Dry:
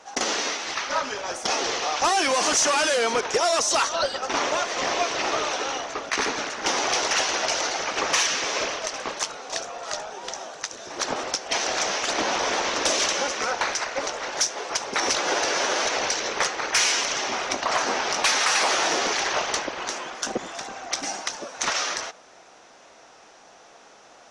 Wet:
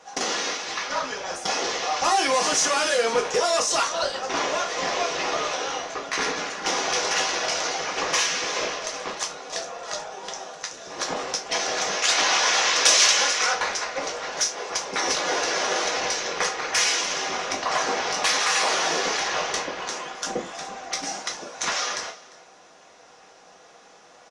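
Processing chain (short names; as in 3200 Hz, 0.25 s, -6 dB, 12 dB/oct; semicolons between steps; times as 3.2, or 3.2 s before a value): 12.02–13.54 tilt shelf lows -8.5 dB, about 690 Hz; echo 0.349 s -21.5 dB; non-linear reverb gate 90 ms falling, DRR 1.5 dB; gain -3 dB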